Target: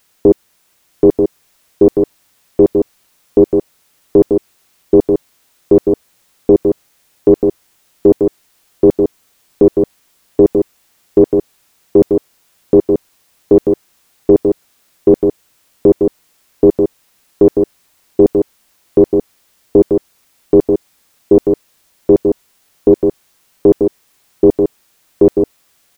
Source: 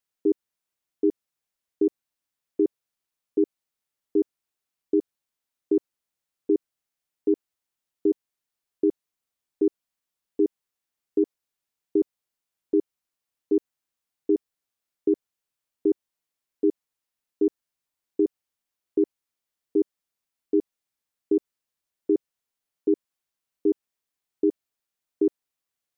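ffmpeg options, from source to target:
-filter_complex "[0:a]apsyclip=29.9,asplit=2[s0][s1];[s1]aecho=0:1:937:0.562[s2];[s0][s2]amix=inputs=2:normalize=0,volume=0.841"

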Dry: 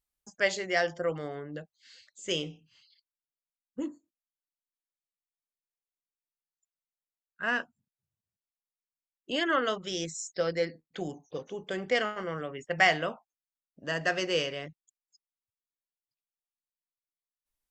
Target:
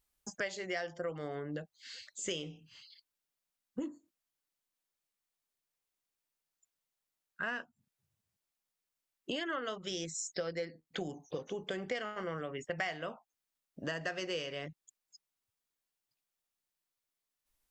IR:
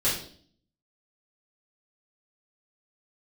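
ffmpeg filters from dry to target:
-af "acompressor=threshold=0.00708:ratio=5,volume=2.11"

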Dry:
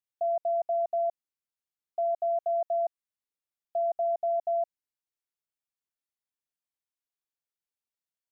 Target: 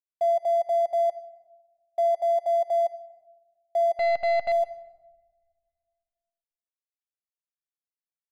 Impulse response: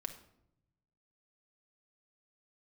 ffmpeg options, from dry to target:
-filter_complex "[0:a]asettb=1/sr,asplit=3[s0][s1][s2];[s0]atrim=end=3.964[s3];[s1]atrim=start=3.96:end=4.52,asetpts=PTS-STARTPTS,afade=t=in:d=0.004:c=qsin,afade=t=out:st=0.556:d=0.004:c=qsin,aeval=exprs='0.0668*(cos(1*acos(clip(val(0)/0.0668,-1,1)))-cos(1*PI/2))+0.0133*(cos(3*acos(clip(val(0)/0.0668,-1,1)))-cos(3*PI/2))+0.00422*(cos(6*acos(clip(val(0)/0.0668,-1,1)))-cos(6*PI/2))+0.000596*(cos(7*acos(clip(val(0)/0.0668,-1,1)))-cos(7*PI/2))':c=same[s4];[s2]atrim=start=4.516[s5];[s3][s4]acrossfade=d=0.004:c1=hsin:c2=qsin[s6];[s6][s5]acrossfade=d=0.004:c1=qsin:c2=hsin,aeval=exprs='sgn(val(0))*max(abs(val(0))-0.00266,0)':c=same,asplit=2[s7][s8];[1:a]atrim=start_sample=2205,asetrate=22932,aresample=44100[s9];[s8][s9]afir=irnorm=-1:irlink=0,volume=0.562[s10];[s7][s10]amix=inputs=2:normalize=0"

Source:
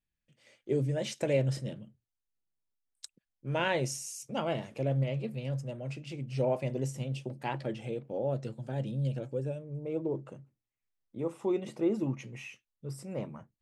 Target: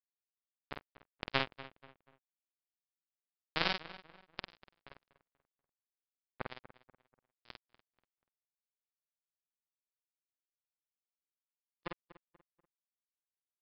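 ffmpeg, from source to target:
-filter_complex "[0:a]adynamicequalizer=threshold=0.00631:dfrequency=540:dqfactor=1.5:tfrequency=540:tqfactor=1.5:attack=5:release=100:ratio=0.375:range=3.5:mode=cutabove:tftype=bell,acrusher=bits=2:mix=0:aa=0.5,asplit=2[s0][s1];[s1]adelay=49,volume=0.631[s2];[s0][s2]amix=inputs=2:normalize=0,asplit=2[s3][s4];[s4]adelay=242,lowpass=f=2500:p=1,volume=0.168,asplit=2[s5][s6];[s6]adelay=242,lowpass=f=2500:p=1,volume=0.37,asplit=2[s7][s8];[s8]adelay=242,lowpass=f=2500:p=1,volume=0.37[s9];[s5][s7][s9]amix=inputs=3:normalize=0[s10];[s3][s10]amix=inputs=2:normalize=0,aresample=11025,aresample=44100,volume=3.98"

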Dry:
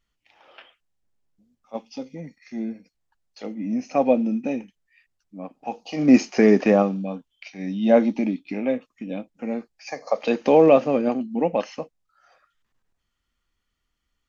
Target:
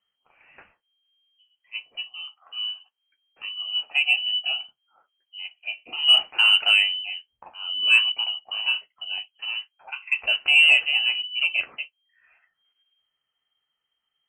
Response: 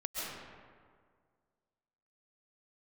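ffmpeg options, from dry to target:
-af "flanger=delay=10:depth=4.7:regen=-43:speed=0.75:shape=sinusoidal,lowpass=f=2700:t=q:w=0.5098,lowpass=f=2700:t=q:w=0.6013,lowpass=f=2700:t=q:w=0.9,lowpass=f=2700:t=q:w=2.563,afreqshift=-3200,acontrast=33,volume=0.708"

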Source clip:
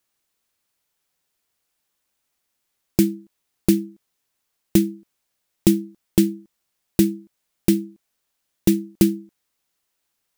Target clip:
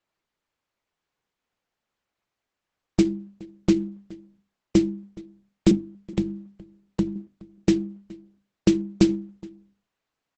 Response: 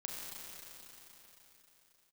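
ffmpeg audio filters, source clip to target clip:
-filter_complex "[0:a]asettb=1/sr,asplit=3[s0][s1][s2];[s0]atrim=end=5.714[s3];[s1]atrim=start=5.71:end=7.16,asetpts=PTS-STARTPTS,afade=t=in:d=0.004:c=qsin,afade=t=out:st=1.446:d=0.004:c=qsin,acrossover=split=230[s4][s5];[s5]acompressor=threshold=0.0398:ratio=10[s6];[s4][s6]amix=inputs=2:normalize=0[s7];[s2]atrim=start=7.156[s8];[s3][s7]acrossfade=d=0.004:c1=hsin:c2=qsin[s9];[s9][s8]acrossfade=d=0.004:c1=qsin:c2=hsin,bandreject=f=50:t=h:w=6,bandreject=f=100:t=h:w=6,bandreject=f=150:t=h:w=6,bandreject=f=200:t=h:w=6,bandreject=f=250:t=h:w=6,bandreject=f=300:t=h:w=6,bandreject=f=350:t=h:w=6,bandreject=f=400:t=h:w=6,adynamicsmooth=sensitivity=4:basefreq=2700,asplit=2[s10][s11];[s11]adelay=419.8,volume=0.0794,highshelf=f=4000:g=-9.45[s12];[s10][s12]amix=inputs=2:normalize=0" -ar 48000 -c:a libopus -b:a 10k

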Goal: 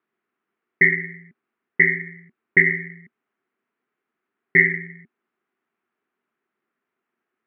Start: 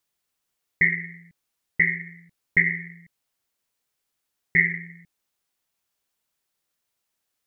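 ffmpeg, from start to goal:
-af "highpass=210,equalizer=f=230:t=q:w=4:g=9,equalizer=f=380:t=q:w=4:g=10,equalizer=f=550:t=q:w=4:g=-8,equalizer=f=870:t=q:w=4:g=-4,equalizer=f=1300:t=q:w=4:g=3,lowpass=f=2100:w=0.5412,lowpass=f=2100:w=1.3066,volume=2.11"

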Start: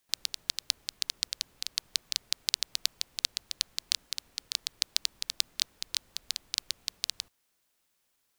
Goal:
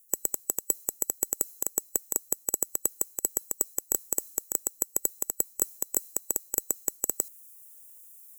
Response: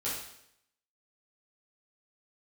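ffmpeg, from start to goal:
-af "afftfilt=real='real(if(lt(b,736),b+184*(1-2*mod(floor(b/184),2)),b),0)':imag='imag(if(lt(b,736),b+184*(1-2*mod(floor(b/184),2)),b),0)':win_size=2048:overlap=0.75,equalizer=f=410:t=o:w=1.8:g=11,areverse,acompressor=threshold=0.02:ratio=6,areverse,aexciter=amount=15:drive=6.9:freq=6600,volume=0.794"

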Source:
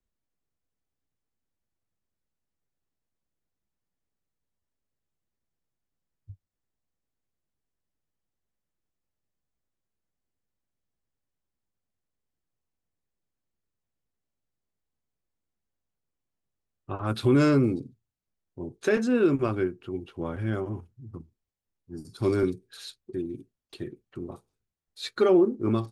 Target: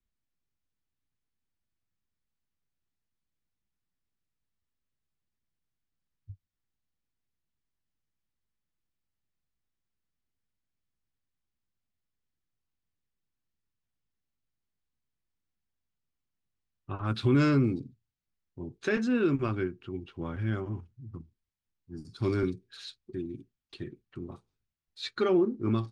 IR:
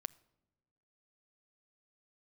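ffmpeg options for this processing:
-af "lowpass=5200,equalizer=f=560:w=0.86:g=-8"

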